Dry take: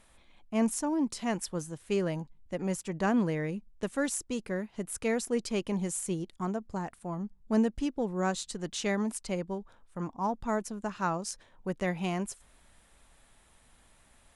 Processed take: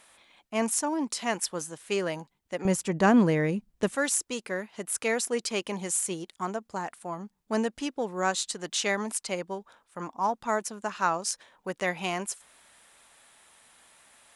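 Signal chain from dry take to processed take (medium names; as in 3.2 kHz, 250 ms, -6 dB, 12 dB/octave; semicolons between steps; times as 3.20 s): high-pass 760 Hz 6 dB/octave, from 2.65 s 110 Hz, from 3.95 s 790 Hz; trim +7.5 dB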